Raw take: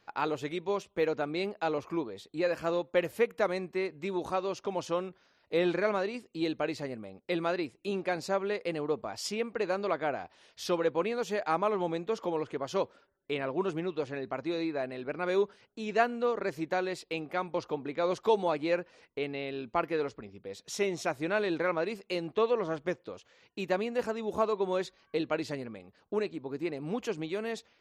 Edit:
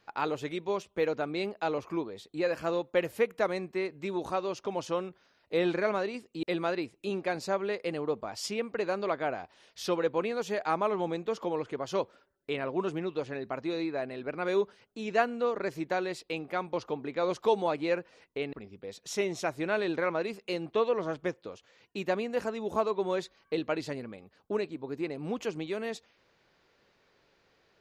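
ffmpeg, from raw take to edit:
-filter_complex "[0:a]asplit=3[a][b][c];[a]atrim=end=6.432[d];[b]atrim=start=7.238:end=19.342[e];[c]atrim=start=20.148[f];[d][e]acrossfade=d=0.004:c1=hsin:c2=hsin[g];[g][f]acrossfade=d=0.004:c1=hsin:c2=hsin"

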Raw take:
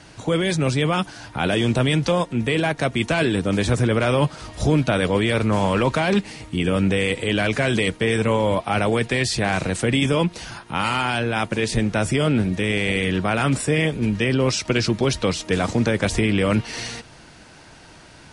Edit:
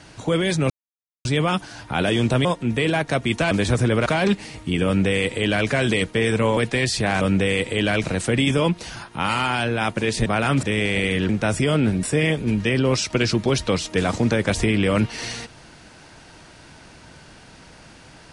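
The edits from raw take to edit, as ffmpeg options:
-filter_complex "[0:a]asplit=12[a][b][c][d][e][f][g][h][i][j][k][l];[a]atrim=end=0.7,asetpts=PTS-STARTPTS,afade=t=out:st=0.696:d=0.004:c=hsin,apad=pad_dur=0.55[m];[b]atrim=start=0.7:end=1.902,asetpts=PTS-STARTPTS,afade=t=in:d=0.004:c=hsin[n];[c]atrim=start=2.148:end=3.212[o];[d]atrim=start=3.498:end=4.052[p];[e]atrim=start=5.918:end=8.432[q];[f]atrim=start=8.948:end=9.592[r];[g]atrim=start=6.718:end=7.552[s];[h]atrim=start=9.588:end=11.812[t];[i]atrim=start=13.208:end=13.582[u];[j]atrim=start=12.548:end=13.212[v];[k]atrim=start=11.808:end=12.552[w];[l]atrim=start=13.578[x];[m][n]concat=n=2:v=0:a=1[y];[y][o]acrossfade=d=0.004:c1=hsin:c2=hsin[z];[z][p]acrossfade=d=0.004:c1=hsin:c2=hsin[aa];[aa][q]acrossfade=d=0.004:c1=hsin:c2=hsin[ab];[ab][r]acrossfade=d=0.004:c1=hsin:c2=hsin[ac];[ac][s]acrossfade=d=0.004:c1=hsin:c2=hsin[ad];[ad][t]acrossfade=d=0.004:c1=hsin:c2=hsin[ae];[ae][u]acrossfade=d=0.004:c1=hsin:c2=hsin[af];[af][v]acrossfade=d=0.004:c1=hsin:c2=hsin[ag];[ag][w]acrossfade=d=0.004:c1=hsin:c2=hsin[ah];[ah][x]acrossfade=d=0.004:c1=hsin:c2=hsin"

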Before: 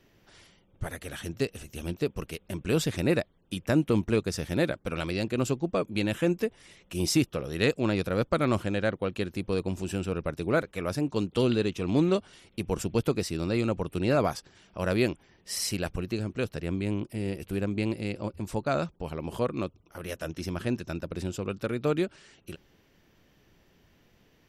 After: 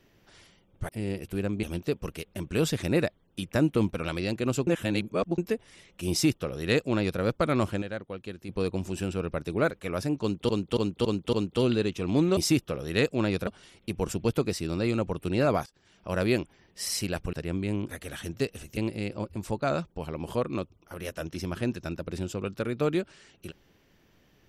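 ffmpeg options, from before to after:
-filter_complex "[0:a]asplit=18[a][b][c][d][e][f][g][h][i][j][k][l][m][n][o][p][q][r];[a]atrim=end=0.892[s];[b]atrim=start=17.068:end=17.812[t];[c]atrim=start=1.768:end=4.072[u];[d]atrim=start=4.848:end=5.592[v];[e]atrim=start=5.588:end=6.302,asetpts=PTS-STARTPTS,areverse[w];[f]atrim=start=6.298:end=8.742[x];[g]atrim=start=8.738:end=9.412,asetpts=PTS-STARTPTS,volume=-8dB[y];[h]atrim=start=9.408:end=11.412[z];[i]atrim=start=11.128:end=11.412[aa];[j]atrim=start=11.128:end=11.412[ab];[k]atrim=start=11.128:end=11.412[ac];[l]atrim=start=11.128:end=12.172[ad];[m]atrim=start=7.018:end=8.122[ae];[n]atrim=start=12.168:end=14.36,asetpts=PTS-STARTPTS,afade=t=out:st=2.188:d=0.004:c=hsin:silence=0.0841395[af];[o]atrim=start=14.36:end=16.032,asetpts=PTS-STARTPTS,afade=t=in:d=0.42:silence=0.0841395[ag];[p]atrim=start=16.508:end=17.072[ah];[q]atrim=start=0.888:end=1.772[ai];[r]atrim=start=17.808[aj];[s][t]acrossfade=d=0.004:c1=hsin:c2=hsin[ak];[ak][u]acrossfade=d=0.004:c1=hsin:c2=hsin[al];[al][v]acrossfade=d=0.004:c1=hsin:c2=hsin[am];[am][w]acrossfade=d=0.004:c1=hsin:c2=hsin[an];[an][x]acrossfade=d=0.004:c1=hsin:c2=hsin[ao];[ao][y]acrossfade=d=0.004:c1=hsin:c2=hsin[ap];[ap][z]acrossfade=d=0.004:c1=hsin:c2=hsin[aq];[aq][aa]acrossfade=d=0.004:c1=hsin:c2=hsin[ar];[ar][ab]acrossfade=d=0.004:c1=hsin:c2=hsin[as];[as][ac]acrossfade=d=0.004:c1=hsin:c2=hsin[at];[at][ad]acrossfade=d=0.004:c1=hsin:c2=hsin[au];[au][ae]acrossfade=d=0.004:c1=hsin:c2=hsin[av];[af][ag]concat=n=2:v=0:a=1[aw];[av][aw]acrossfade=d=0.004:c1=hsin:c2=hsin[ax];[ax][ah]acrossfade=d=0.004:c1=hsin:c2=hsin[ay];[ay][ai]acrossfade=d=0.004:c1=hsin:c2=hsin[az];[az][aj]acrossfade=d=0.004:c1=hsin:c2=hsin"

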